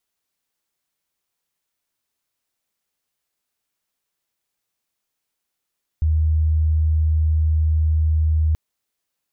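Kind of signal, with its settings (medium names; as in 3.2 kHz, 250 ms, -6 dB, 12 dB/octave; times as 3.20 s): tone sine 78.3 Hz -14.5 dBFS 2.53 s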